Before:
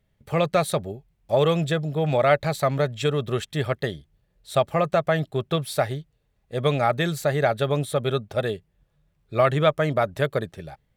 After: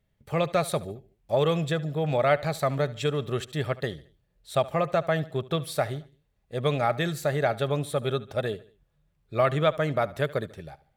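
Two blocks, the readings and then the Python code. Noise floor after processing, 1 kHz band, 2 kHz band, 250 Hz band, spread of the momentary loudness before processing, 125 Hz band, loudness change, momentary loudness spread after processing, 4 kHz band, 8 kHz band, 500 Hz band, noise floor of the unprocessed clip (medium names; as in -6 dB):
-72 dBFS, -3.5 dB, -3.5 dB, -3.5 dB, 9 LU, -3.5 dB, -3.5 dB, 9 LU, -3.5 dB, -3.5 dB, -3.5 dB, -70 dBFS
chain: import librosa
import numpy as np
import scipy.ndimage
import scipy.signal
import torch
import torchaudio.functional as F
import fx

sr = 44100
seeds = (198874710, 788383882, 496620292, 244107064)

y = fx.echo_feedback(x, sr, ms=73, feedback_pct=43, wet_db=-19.0)
y = y * 10.0 ** (-3.5 / 20.0)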